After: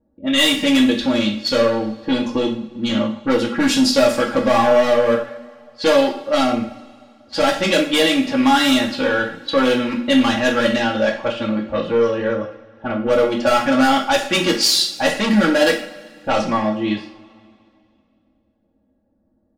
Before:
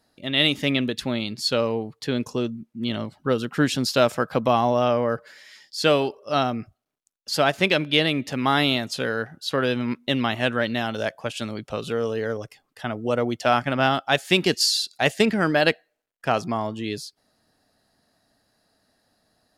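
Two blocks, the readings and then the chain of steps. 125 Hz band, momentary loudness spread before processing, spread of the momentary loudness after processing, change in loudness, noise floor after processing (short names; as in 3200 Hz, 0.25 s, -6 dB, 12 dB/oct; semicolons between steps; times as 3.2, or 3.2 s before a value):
-2.0 dB, 11 LU, 9 LU, +6.0 dB, -64 dBFS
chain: overloaded stage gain 20 dB; comb 3.6 ms, depth 84%; low-pass opened by the level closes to 370 Hz, open at -18 dBFS; two-slope reverb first 0.44 s, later 2.4 s, from -21 dB, DRR 0 dB; gain +3.5 dB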